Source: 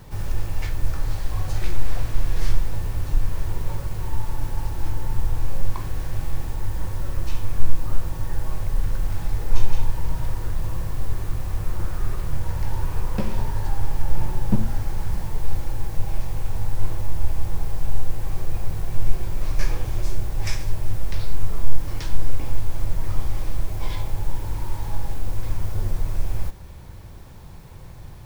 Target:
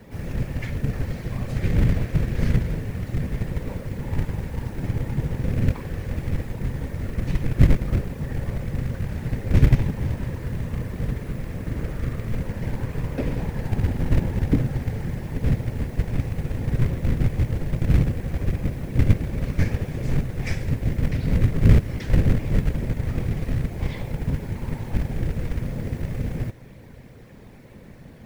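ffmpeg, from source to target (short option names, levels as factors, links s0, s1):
-filter_complex "[0:a]equalizer=f=91:w=5.4:g=-2,afftfilt=real='hypot(re,im)*cos(2*PI*random(0))':imag='hypot(re,im)*sin(2*PI*random(1))':win_size=512:overlap=0.75,acrossover=split=120|840[s0][s1][s2];[s0]acrusher=bits=6:mode=log:mix=0:aa=0.000001[s3];[s3][s1][s2]amix=inputs=3:normalize=0,equalizer=f=125:t=o:w=1:g=4,equalizer=f=250:t=o:w=1:g=7,equalizer=f=500:t=o:w=1:g=11,equalizer=f=1000:t=o:w=1:g=-3,equalizer=f=2000:t=o:w=1:g=11,volume=0.794"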